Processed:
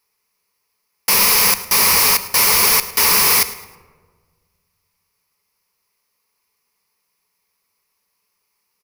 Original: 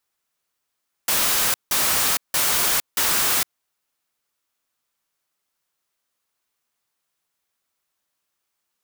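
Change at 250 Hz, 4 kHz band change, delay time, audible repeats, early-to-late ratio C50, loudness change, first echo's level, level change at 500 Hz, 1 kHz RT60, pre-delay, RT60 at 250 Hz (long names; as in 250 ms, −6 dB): +6.5 dB, +7.5 dB, 107 ms, 2, 13.5 dB, +6.5 dB, −18.0 dB, +7.5 dB, 1.3 s, 7 ms, 1.8 s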